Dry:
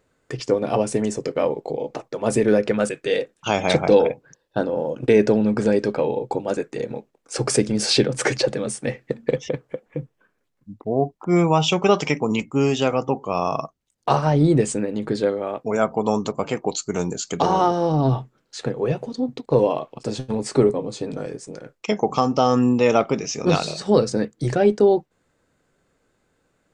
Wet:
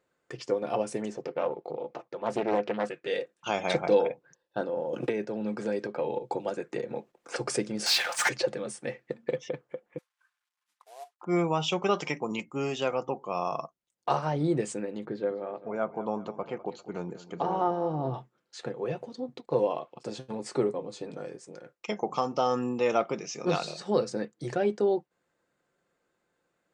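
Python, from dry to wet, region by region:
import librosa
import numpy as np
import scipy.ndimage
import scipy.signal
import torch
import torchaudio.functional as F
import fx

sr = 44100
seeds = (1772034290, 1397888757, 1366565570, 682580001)

y = fx.chain(x, sr, fx.air_absorb(metres=110.0),
    fx.doppler_dist(depth_ms=0.47), at=(1.1, 3.07))
y = fx.chain(y, sr, fx.tremolo_shape(shape='saw_up', hz=3.2, depth_pct=55),
    fx.band_squash(depth_pct=100), at=(4.93, 7.36))
y = fx.chain(y, sr, fx.steep_highpass(hz=710.0, slope=48),
    fx.power_curve(exponent=0.5), at=(7.86, 8.29))
y = fx.chain(y, sr, fx.cvsd(bps=64000),
    fx.highpass(hz=1000.0, slope=24), at=(9.98, 11.21))
y = fx.chain(y, sr, fx.spacing_loss(db_at_10k=28),
    fx.echo_feedback(ms=199, feedback_pct=47, wet_db=-16), at=(15.05, 18.14))
y = fx.highpass(y, sr, hz=780.0, slope=6)
y = fx.tilt_eq(y, sr, slope=-2.0)
y = y + 0.3 * np.pad(y, (int(5.7 * sr / 1000.0), 0))[:len(y)]
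y = F.gain(torch.from_numpy(y), -5.5).numpy()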